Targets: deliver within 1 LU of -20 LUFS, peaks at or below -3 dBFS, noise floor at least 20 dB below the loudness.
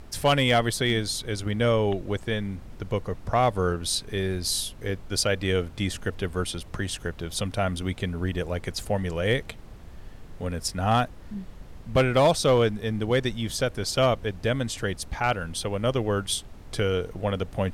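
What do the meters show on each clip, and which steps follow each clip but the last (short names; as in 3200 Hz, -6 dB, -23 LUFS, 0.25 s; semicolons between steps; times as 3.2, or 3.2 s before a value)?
clipped 0.2%; flat tops at -13.5 dBFS; noise floor -44 dBFS; noise floor target -47 dBFS; loudness -26.5 LUFS; peak -13.5 dBFS; loudness target -20.0 LUFS
-> clip repair -13.5 dBFS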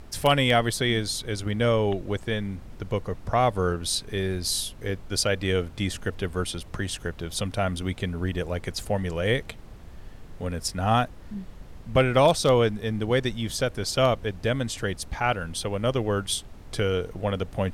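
clipped 0.0%; noise floor -44 dBFS; noise floor target -46 dBFS
-> noise print and reduce 6 dB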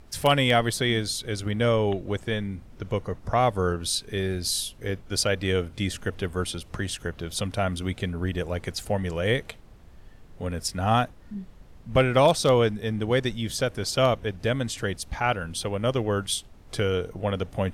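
noise floor -49 dBFS; loudness -26.0 LUFS; peak -5.5 dBFS; loudness target -20.0 LUFS
-> gain +6 dB; limiter -3 dBFS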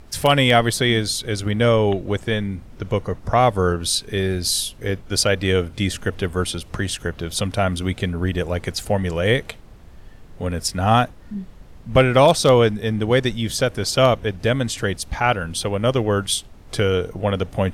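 loudness -20.5 LUFS; peak -3.0 dBFS; noise floor -43 dBFS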